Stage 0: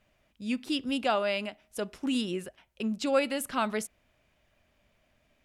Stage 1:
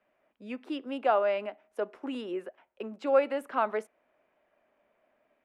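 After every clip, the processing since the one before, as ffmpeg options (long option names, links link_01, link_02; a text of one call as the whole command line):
ffmpeg -i in.wav -filter_complex "[0:a]acrossover=split=250 2200:gain=0.0631 1 0.0891[link_01][link_02][link_03];[link_01][link_02][link_03]amix=inputs=3:normalize=0,acrossover=split=300|1100|5100[link_04][link_05][link_06][link_07];[link_04]alimiter=level_in=20dB:limit=-24dB:level=0:latency=1:release=380,volume=-20dB[link_08];[link_05]dynaudnorm=framelen=140:gausssize=3:maxgain=4dB[link_09];[link_08][link_09][link_06][link_07]amix=inputs=4:normalize=0" out.wav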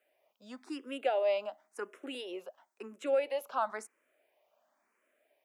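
ffmpeg -i in.wav -filter_complex "[0:a]bass=frequency=250:gain=-13,treble=frequency=4000:gain=12,alimiter=limit=-18.5dB:level=0:latency=1:release=225,asplit=2[link_01][link_02];[link_02]afreqshift=0.96[link_03];[link_01][link_03]amix=inputs=2:normalize=1" out.wav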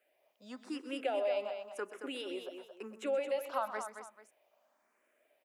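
ffmpeg -i in.wav -filter_complex "[0:a]acompressor=threshold=-32dB:ratio=2.5,asplit=2[link_01][link_02];[link_02]aecho=0:1:128|224|440:0.224|0.398|0.133[link_03];[link_01][link_03]amix=inputs=2:normalize=0" out.wav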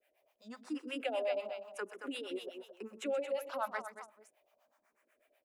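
ffmpeg -i in.wav -filter_complex "[0:a]acrossover=split=560[link_01][link_02];[link_01]aeval=exprs='val(0)*(1-1/2+1/2*cos(2*PI*8.1*n/s))':channel_layout=same[link_03];[link_02]aeval=exprs='val(0)*(1-1/2-1/2*cos(2*PI*8.1*n/s))':channel_layout=same[link_04];[link_03][link_04]amix=inputs=2:normalize=0,volume=4dB" out.wav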